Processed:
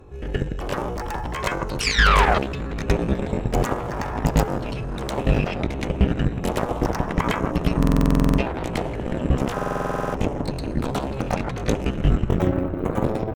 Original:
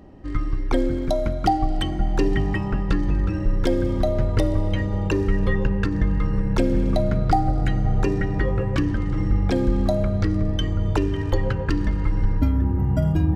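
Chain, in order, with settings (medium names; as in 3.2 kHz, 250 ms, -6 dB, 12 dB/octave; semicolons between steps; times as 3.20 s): reverse echo 109 ms -4.5 dB; painted sound fall, 1.82–2.40 s, 430–2100 Hz -16 dBFS; treble shelf 4.5 kHz +4.5 dB; pitch shift +5.5 st; bass shelf 130 Hz +6 dB; band-stop 4.5 kHz, Q 6.1; Chebyshev shaper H 7 -10 dB, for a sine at -1.5 dBFS; buffer glitch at 7.78/9.54 s, samples 2048, times 12; trim -5.5 dB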